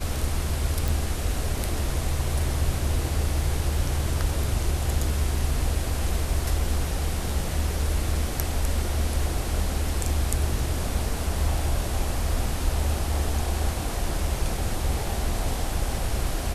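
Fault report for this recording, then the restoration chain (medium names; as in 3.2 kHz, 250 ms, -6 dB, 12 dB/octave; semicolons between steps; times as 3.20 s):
0.88 s: pop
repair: de-click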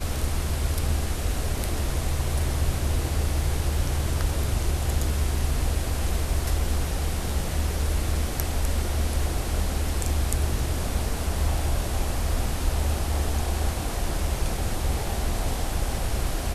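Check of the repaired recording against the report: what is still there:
nothing left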